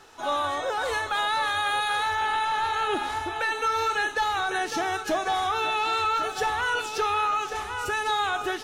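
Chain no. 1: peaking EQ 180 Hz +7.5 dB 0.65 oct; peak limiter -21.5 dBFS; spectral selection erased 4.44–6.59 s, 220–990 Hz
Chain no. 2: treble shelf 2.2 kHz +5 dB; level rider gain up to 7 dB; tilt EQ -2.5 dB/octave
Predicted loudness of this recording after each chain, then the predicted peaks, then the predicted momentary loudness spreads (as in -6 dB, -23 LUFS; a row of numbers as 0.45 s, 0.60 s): -29.0 LUFS, -18.5 LUFS; -21.0 dBFS, -7.0 dBFS; 4 LU, 4 LU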